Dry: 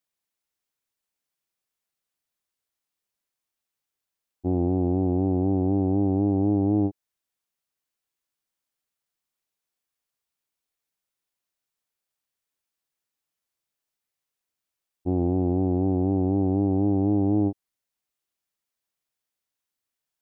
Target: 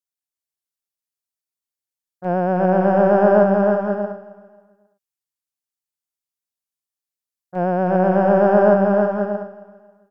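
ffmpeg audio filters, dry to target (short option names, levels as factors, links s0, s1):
-filter_complex "[0:a]agate=range=0.126:threshold=0.0891:ratio=16:detection=peak,asplit=2[s0][s1];[s1]aecho=0:1:630|1008|1235|1371|1453:0.631|0.398|0.251|0.158|0.1[s2];[s0][s2]amix=inputs=2:normalize=0,asetrate=88200,aresample=44100,bass=f=250:g=1,treble=f=4000:g=7,asplit=2[s3][s4];[s4]aecho=0:1:270|540|810:0.119|0.044|0.0163[s5];[s3][s5]amix=inputs=2:normalize=0,volume=2.82"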